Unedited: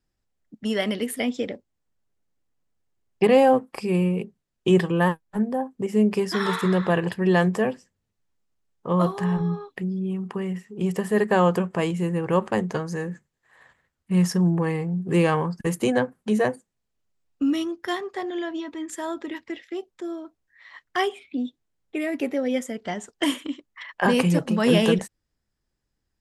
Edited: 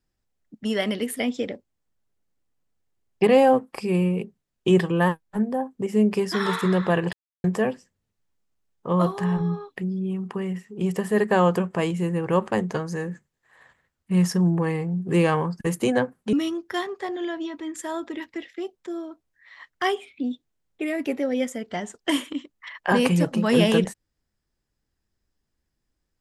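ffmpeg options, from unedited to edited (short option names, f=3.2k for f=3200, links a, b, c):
-filter_complex "[0:a]asplit=4[a][b][c][d];[a]atrim=end=7.13,asetpts=PTS-STARTPTS,afade=t=out:st=7.126:d=0.004:c=hsin[e];[b]atrim=start=7.13:end=7.44,asetpts=PTS-STARTPTS,volume=0[f];[c]atrim=start=7.44:end=16.332,asetpts=PTS-STARTPTS,afade=t=in:d=0.004:c=hsin[g];[d]atrim=start=17.468[h];[e][f][g]concat=n=3:v=0:a=1[i];[i][h]acrossfade=d=0.004:c1=hsin:c2=hsin"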